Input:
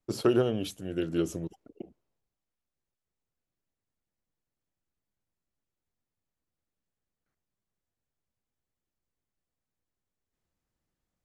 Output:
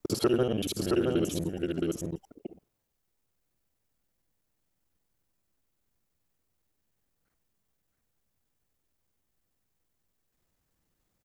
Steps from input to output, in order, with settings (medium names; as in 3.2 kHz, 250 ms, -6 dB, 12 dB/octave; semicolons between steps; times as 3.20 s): time reversed locally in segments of 48 ms; treble shelf 11 kHz +7.5 dB; delay 669 ms -5 dB; compression 2:1, threshold -34 dBFS, peak gain reduction 8.5 dB; trim +6.5 dB